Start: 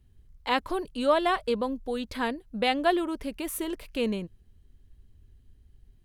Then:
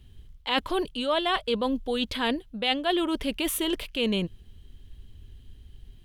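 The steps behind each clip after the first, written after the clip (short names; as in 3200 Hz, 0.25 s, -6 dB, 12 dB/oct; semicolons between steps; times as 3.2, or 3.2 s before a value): bell 3200 Hz +11 dB 0.62 oct; reverse; compressor 4:1, threshold -33 dBFS, peak gain reduction 14 dB; reverse; gain +8.5 dB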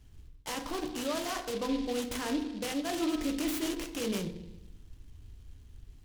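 limiter -21.5 dBFS, peak gain reduction 10.5 dB; FDN reverb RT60 0.96 s, low-frequency decay 1.2×, high-frequency decay 0.35×, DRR 3.5 dB; noise-modulated delay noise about 3200 Hz, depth 0.068 ms; gain -5 dB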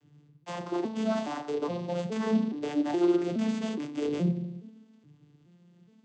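arpeggiated vocoder minor triad, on D3, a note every 0.419 s; gain +5.5 dB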